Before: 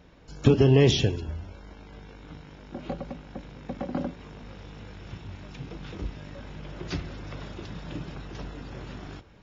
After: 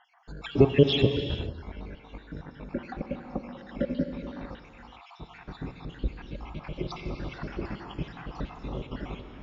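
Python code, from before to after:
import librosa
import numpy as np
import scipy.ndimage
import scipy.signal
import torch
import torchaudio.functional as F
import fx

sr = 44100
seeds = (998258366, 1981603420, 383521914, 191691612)

p1 = fx.spec_dropout(x, sr, seeds[0], share_pct=66)
p2 = scipy.signal.sosfilt(scipy.signal.butter(2, 3500.0, 'lowpass', fs=sr, output='sos'), p1)
p3 = fx.peak_eq(p2, sr, hz=95.0, db=-6.5, octaves=0.67)
p4 = fx.rider(p3, sr, range_db=3, speed_s=0.5)
p5 = p3 + F.gain(torch.from_numpy(p4), 0.0).numpy()
p6 = fx.rev_gated(p5, sr, seeds[1], gate_ms=480, shape='flat', drr_db=6.5)
y = F.gain(torch.from_numpy(p6), -1.0).numpy()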